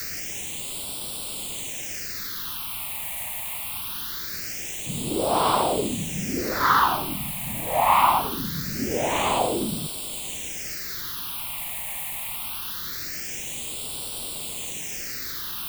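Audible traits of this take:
a quantiser's noise floor 6 bits, dither triangular
phaser sweep stages 6, 0.23 Hz, lowest notch 380–1,800 Hz

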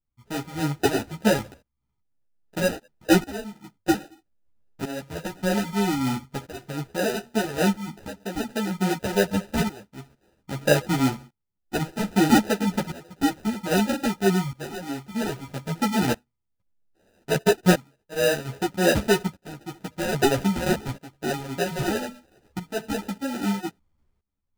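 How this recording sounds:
phaser sweep stages 8, 3.3 Hz, lowest notch 370–1,600 Hz
tremolo saw up 0.62 Hz, depth 90%
aliases and images of a low sample rate 1,100 Hz, jitter 0%
a shimmering, thickened sound

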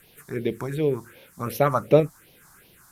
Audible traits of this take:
tremolo saw up 1.5 Hz, depth 35%
a quantiser's noise floor 10 bits, dither triangular
phaser sweep stages 4, 2.7 Hz, lowest notch 440–1,400 Hz
Ogg Vorbis

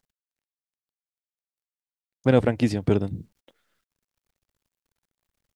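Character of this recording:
a quantiser's noise floor 12 bits, dither none
tremolo saw up 0.57 Hz, depth 40%

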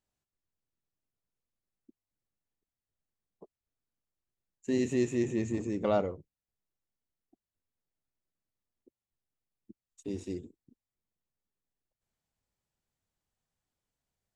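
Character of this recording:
background noise floor −94 dBFS
spectral slope −6.0 dB per octave

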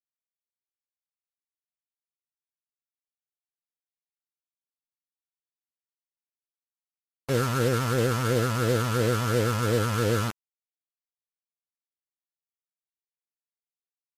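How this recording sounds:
phaser sweep stages 6, 2.9 Hz, lowest notch 460–1,100 Hz
a quantiser's noise floor 6 bits, dither none
MP3

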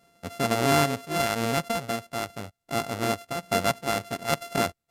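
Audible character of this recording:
a buzz of ramps at a fixed pitch in blocks of 64 samples
sample-and-hold tremolo
SBC

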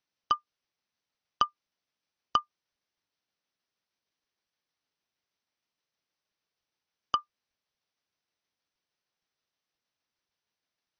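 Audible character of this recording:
tremolo saw down 6.4 Hz, depth 30%
AC-3

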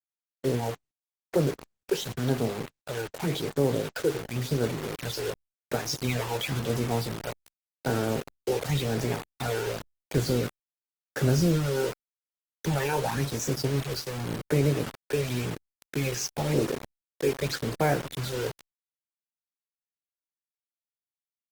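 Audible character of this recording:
phaser sweep stages 12, 0.91 Hz, lowest notch 200–4,300 Hz
a quantiser's noise floor 6 bits, dither none
Opus

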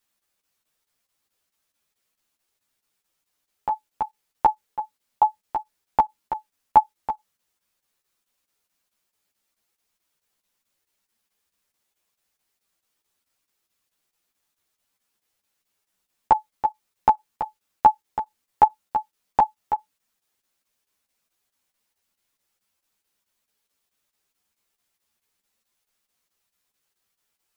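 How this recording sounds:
chopped level 4.6 Hz, depth 65%, duty 85%
a shimmering, thickened sound

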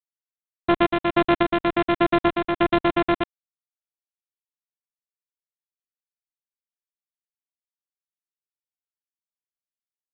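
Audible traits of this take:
a buzz of ramps at a fixed pitch in blocks of 128 samples
sample-and-hold tremolo 3.5 Hz
a quantiser's noise floor 10 bits, dither none
G.726

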